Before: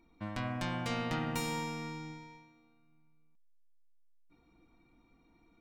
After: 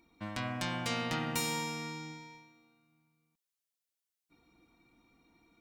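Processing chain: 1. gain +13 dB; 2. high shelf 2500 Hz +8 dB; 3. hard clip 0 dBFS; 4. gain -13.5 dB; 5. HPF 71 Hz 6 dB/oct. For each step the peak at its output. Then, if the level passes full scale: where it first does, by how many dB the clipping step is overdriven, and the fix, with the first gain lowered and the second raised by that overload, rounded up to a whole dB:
-7.5, -5.5, -5.5, -19.0, -18.5 dBFS; no overload

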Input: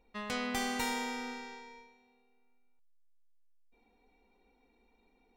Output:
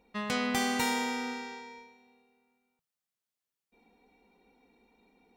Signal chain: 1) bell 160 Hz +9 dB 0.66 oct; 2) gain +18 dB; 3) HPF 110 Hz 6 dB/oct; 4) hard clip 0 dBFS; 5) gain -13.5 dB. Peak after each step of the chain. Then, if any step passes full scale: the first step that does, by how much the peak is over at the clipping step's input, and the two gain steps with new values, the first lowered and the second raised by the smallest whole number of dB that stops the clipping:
-20.0, -2.0, -2.5, -2.5, -16.0 dBFS; no overload

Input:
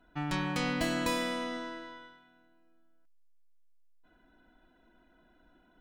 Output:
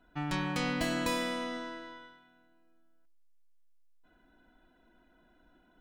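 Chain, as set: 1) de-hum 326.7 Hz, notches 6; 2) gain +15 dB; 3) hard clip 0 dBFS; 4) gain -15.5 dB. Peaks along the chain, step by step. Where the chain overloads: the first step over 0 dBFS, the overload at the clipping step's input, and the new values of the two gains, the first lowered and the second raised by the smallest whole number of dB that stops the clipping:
-17.0, -2.0, -2.0, -17.5 dBFS; no overload

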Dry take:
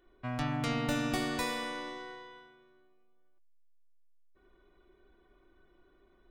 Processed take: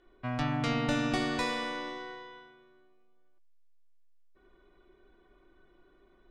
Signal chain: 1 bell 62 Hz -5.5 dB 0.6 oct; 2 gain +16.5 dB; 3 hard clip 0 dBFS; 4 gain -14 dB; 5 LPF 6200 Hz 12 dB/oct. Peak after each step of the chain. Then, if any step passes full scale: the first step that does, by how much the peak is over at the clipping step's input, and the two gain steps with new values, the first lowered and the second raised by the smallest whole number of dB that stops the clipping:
-19.0, -2.5, -2.5, -16.5, -17.0 dBFS; no overload

